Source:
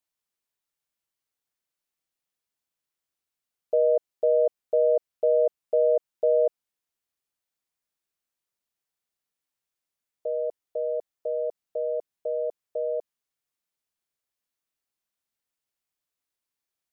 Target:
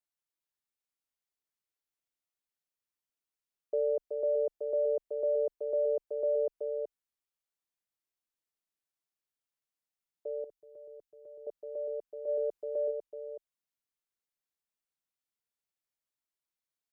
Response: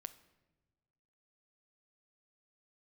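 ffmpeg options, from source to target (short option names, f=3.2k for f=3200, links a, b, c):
-filter_complex "[0:a]aecho=1:1:376:0.531,afreqshift=-34,asettb=1/sr,asplit=3[a][b][c];[a]atrim=end=10.444[d];[b]atrim=start=10.44:end=11.47,asetpts=PTS-STARTPTS,afade=t=in:d=0.004:c=qsin,afade=t=out:st=1.026:d=0.004:c=qsin,equalizer=f=610:t=o:w=2:g=-14.5[e];[c]atrim=start=11.466[f];[d][e]acrossfade=d=0.004:c1=hsin:c2=qsin[g];[g][f]acrossfade=d=0.004:c1=qsin:c2=hsin,asplit=3[h][i][j];[h]afade=t=out:st=12.27:d=0.02[k];[i]acontrast=28,afade=t=in:st=12.27:d=0.02,afade=t=out:st=12.9:d=0.02[l];[j]afade=t=in:st=12.9:d=0.02[m];[k][l][m]amix=inputs=3:normalize=0,volume=-8.5dB"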